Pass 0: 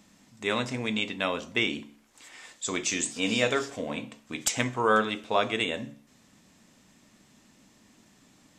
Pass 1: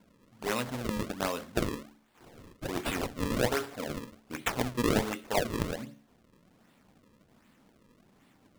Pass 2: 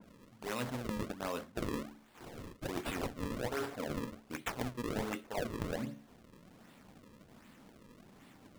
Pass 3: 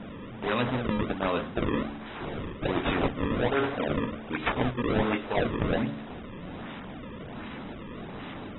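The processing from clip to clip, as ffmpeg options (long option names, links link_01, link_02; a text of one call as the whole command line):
ffmpeg -i in.wav -af "acrusher=samples=34:mix=1:aa=0.000001:lfo=1:lforange=54.4:lforate=1.3,volume=-3.5dB" out.wav
ffmpeg -i in.wav -af "areverse,acompressor=threshold=-39dB:ratio=6,areverse,adynamicequalizer=threshold=0.00112:dfrequency=2200:dqfactor=0.7:tfrequency=2200:tqfactor=0.7:attack=5:release=100:ratio=0.375:range=2:mode=cutabove:tftype=highshelf,volume=4.5dB" out.wav
ffmpeg -i in.wav -af "aeval=exprs='val(0)+0.5*0.00501*sgn(val(0))':channel_layout=same,volume=8.5dB" -ar 22050 -c:a aac -b:a 16k out.aac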